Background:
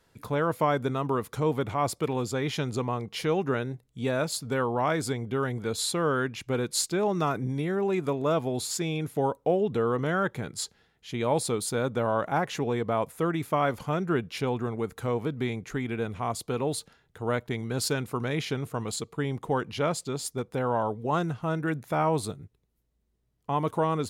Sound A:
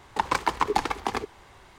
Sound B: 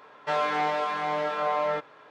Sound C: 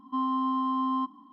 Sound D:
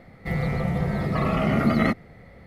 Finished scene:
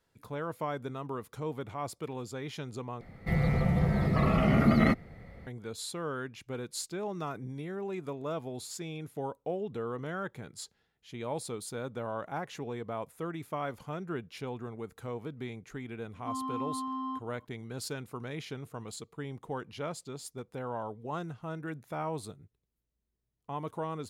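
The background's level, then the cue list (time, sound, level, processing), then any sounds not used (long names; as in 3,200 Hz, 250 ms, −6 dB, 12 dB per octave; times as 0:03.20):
background −10 dB
0:03.01: overwrite with D −4 dB + low-shelf EQ 150 Hz +5 dB
0:16.13: mix in C −8 dB
not used: A, B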